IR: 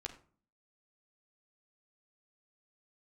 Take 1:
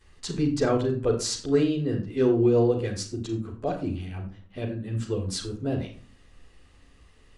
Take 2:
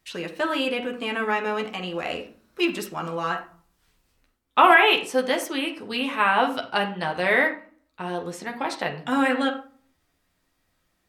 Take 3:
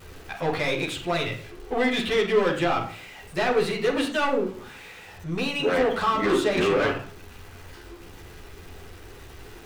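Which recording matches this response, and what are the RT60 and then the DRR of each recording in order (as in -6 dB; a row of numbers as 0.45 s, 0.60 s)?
2; no single decay rate, no single decay rate, no single decay rate; -11.0 dB, 1.5 dB, -6.0 dB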